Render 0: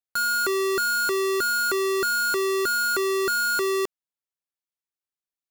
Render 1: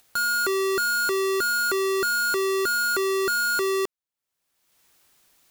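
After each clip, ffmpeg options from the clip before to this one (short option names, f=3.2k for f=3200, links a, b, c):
-af "acompressor=mode=upward:threshold=-37dB:ratio=2.5"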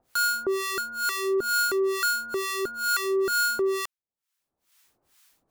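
-filter_complex "[0:a]acrossover=split=930[a][b];[a]aeval=exprs='val(0)*(1-1/2+1/2*cos(2*PI*2.2*n/s))':c=same[c];[b]aeval=exprs='val(0)*(1-1/2-1/2*cos(2*PI*2.2*n/s))':c=same[d];[c][d]amix=inputs=2:normalize=0,volume=2dB"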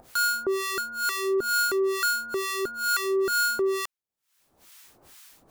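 -af "acompressor=mode=upward:threshold=-40dB:ratio=2.5"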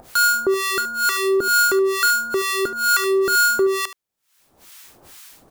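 -af "aecho=1:1:74:0.188,volume=7.5dB"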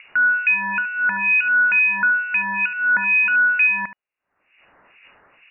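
-af "lowpass=f=2.5k:t=q:w=0.5098,lowpass=f=2.5k:t=q:w=0.6013,lowpass=f=2.5k:t=q:w=0.9,lowpass=f=2.5k:t=q:w=2.563,afreqshift=-2900,volume=1dB"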